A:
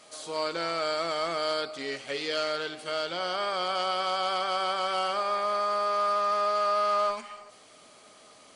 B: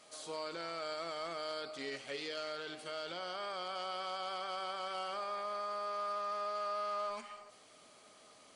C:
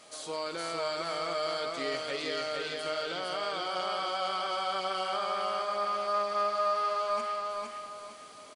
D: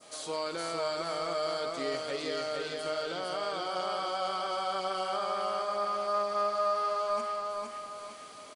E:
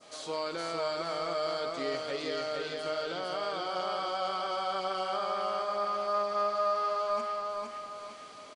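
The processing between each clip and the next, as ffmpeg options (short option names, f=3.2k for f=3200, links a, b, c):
-af "alimiter=level_in=1dB:limit=-24dB:level=0:latency=1:release=24,volume=-1dB,volume=-6.5dB"
-af "aecho=1:1:459|918|1377|1836|2295:0.708|0.248|0.0867|0.0304|0.0106,volume=6dB"
-af "adynamicequalizer=threshold=0.00501:dfrequency=2500:dqfactor=0.74:tfrequency=2500:tqfactor=0.74:attack=5:release=100:ratio=0.375:range=3:mode=cutabove:tftype=bell,volume=1.5dB"
-af "lowpass=6.5k"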